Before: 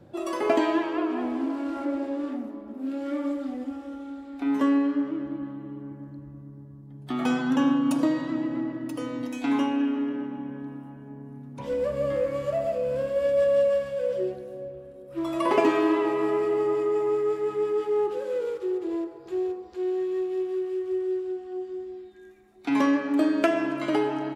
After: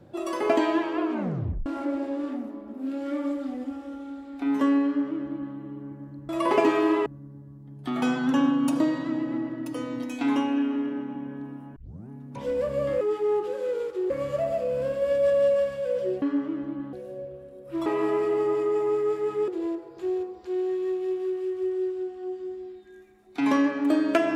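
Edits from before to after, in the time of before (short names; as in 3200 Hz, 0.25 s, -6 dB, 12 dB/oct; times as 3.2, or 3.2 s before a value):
1.12 tape stop 0.54 s
4.85–5.56 copy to 14.36
10.99 tape start 0.33 s
15.29–16.06 move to 6.29
17.68–18.77 move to 12.24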